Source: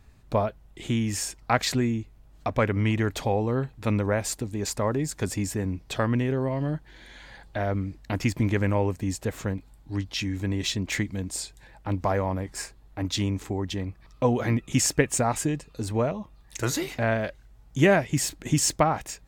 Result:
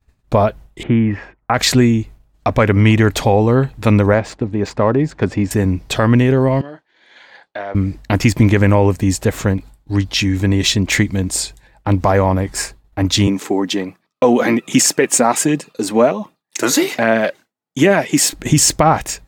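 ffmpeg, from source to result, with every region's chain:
ffmpeg -i in.wav -filter_complex "[0:a]asettb=1/sr,asplit=3[link_01][link_02][link_03];[link_01]atrim=end=0.834[link_04];[link_02]atrim=start=0.83:end=1.54,asetpts=PTS-STARTPTS,afade=type=in:duration=0.004:curve=qsin,afade=type=out:start_time=0.706:duration=0.004:curve=qsin,lowpass=frequency=2000:width=0.5412,lowpass=frequency=2000:width=1.3066,lowshelf=frequency=77:gain=-7.5[link_05];[link_03]atrim=start=1.536[link_06];[link_04][link_05]acrossfade=duration=0.004:curve1=hsin:curve2=qsin[link_07];[link_07][link_06]acrossfade=duration=0.004:curve1=qsin:curve2=hsin,asettb=1/sr,asplit=3[link_08][link_09][link_10];[link_08]atrim=end=4.144[link_11];[link_09]atrim=start=4.14:end=5.51,asetpts=PTS-STARTPTS,afade=type=in:duration=0.004:curve=qsin,afade=type=out:start_time=1.366:duration=0.004:curve=qsin,highpass=frequency=110:poles=1,aemphasis=mode=reproduction:type=75kf,adynamicsmooth=sensitivity=5:basefreq=3900[link_12];[link_10]atrim=start=5.506[link_13];[link_11][link_12]acrossfade=duration=0.004:curve1=hsin:curve2=qsin[link_14];[link_14][link_13]acrossfade=duration=0.004:curve1=qsin:curve2=hsin,asettb=1/sr,asplit=3[link_15][link_16][link_17];[link_15]atrim=end=6.614[link_18];[link_16]atrim=start=6.61:end=7.75,asetpts=PTS-STARTPTS,afade=type=in:duration=0.004:curve=qsin,afade=type=out:start_time=1.136:duration=0.004:curve=qsin,acompressor=threshold=-32dB:ratio=12:attack=3.2:release=140:knee=1:detection=peak,highpass=410,lowpass=4900,asplit=2[link_19][link_20];[link_20]adelay=29,volume=-12dB[link_21];[link_19][link_21]amix=inputs=2:normalize=0,atrim=end_sample=50274[link_22];[link_17]atrim=start=7.746[link_23];[link_18][link_22]acrossfade=duration=0.004:curve1=hsin:curve2=qsin[link_24];[link_24][link_23]acrossfade=duration=0.004:curve1=qsin:curve2=hsin,asettb=1/sr,asplit=3[link_25][link_26][link_27];[link_25]atrim=end=13.274[link_28];[link_26]atrim=start=13.27:end=18.33,asetpts=PTS-STARTPTS,afade=type=in:duration=0.004:curve=qsin,afade=type=out:start_time=5.056:duration=0.004:curve=qsin,highpass=frequency=190:width=0.5412,highpass=frequency=190:width=1.3066,aphaser=in_gain=1:out_gain=1:delay=4.2:decay=0.33:speed=1.3:type=triangular[link_29];[link_27]atrim=start=18.326[link_30];[link_28][link_29]acrossfade=duration=0.004:curve1=hsin:curve2=qsin[link_31];[link_31][link_30]acrossfade=duration=0.004:curve1=qsin:curve2=hsin,agate=range=-33dB:threshold=-41dB:ratio=3:detection=peak,alimiter=level_in=14dB:limit=-1dB:release=50:level=0:latency=1,volume=-1dB" out.wav

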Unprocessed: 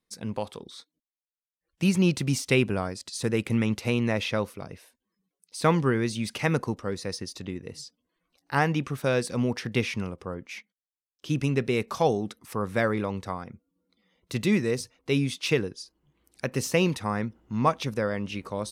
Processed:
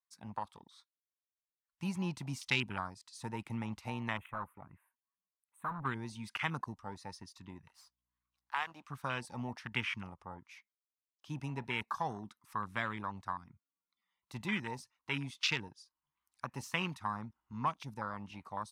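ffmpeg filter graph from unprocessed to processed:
ffmpeg -i in.wav -filter_complex "[0:a]asettb=1/sr,asplit=3[link_01][link_02][link_03];[link_01]atrim=end=4.174[link_04];[link_02]atrim=start=4.17:end=5.85,asetpts=PTS-STARTPTS,afade=type=in:duration=0.004:curve=qsin,afade=type=out:start_time=1.676:duration=0.004:curve=qsin,volume=28dB,asoftclip=hard,volume=-28dB,asuperstop=centerf=5000:order=4:qfactor=0.54[link_05];[link_03]atrim=start=5.846[link_06];[link_04][link_05]acrossfade=duration=0.004:curve1=hsin:curve2=qsin[link_07];[link_07][link_06]acrossfade=duration=0.004:curve1=qsin:curve2=hsin,asettb=1/sr,asplit=3[link_08][link_09][link_10];[link_08]atrim=end=7.674[link_11];[link_09]atrim=start=7.67:end=8.88,asetpts=PTS-STARTPTS,afade=type=in:duration=0.004:curve=qsin,afade=type=out:start_time=1.206:duration=0.004:curve=qsin,aeval=exprs='if(lt(val(0),0),0.251*val(0),val(0))':channel_layout=same,highpass=420,aeval=exprs='val(0)+0.000708*(sin(2*PI*60*n/s)+sin(2*PI*2*60*n/s)/2+sin(2*PI*3*60*n/s)/3+sin(2*PI*4*60*n/s)/4+sin(2*PI*5*60*n/s)/5)':channel_layout=same[link_12];[link_10]atrim=start=8.876[link_13];[link_11][link_12]acrossfade=duration=0.004:curve1=hsin:curve2=qsin[link_14];[link_14][link_13]acrossfade=duration=0.004:curve1=qsin:curve2=hsin,afwtdn=0.0251,lowshelf=frequency=690:width_type=q:width=3:gain=-13,acrossover=split=490|3000[link_15][link_16][link_17];[link_16]acompressor=threshold=-37dB:ratio=6[link_18];[link_15][link_18][link_17]amix=inputs=3:normalize=0" out.wav

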